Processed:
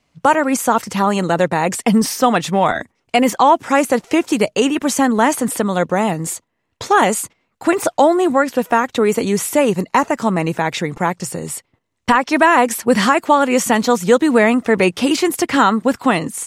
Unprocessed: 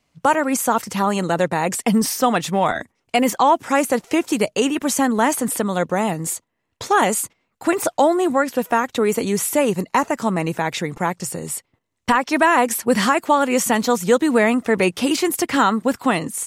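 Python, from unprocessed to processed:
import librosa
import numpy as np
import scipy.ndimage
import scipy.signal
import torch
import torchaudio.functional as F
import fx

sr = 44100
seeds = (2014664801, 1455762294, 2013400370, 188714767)

y = fx.high_shelf(x, sr, hz=10000.0, db=-8.0)
y = y * 10.0 ** (3.5 / 20.0)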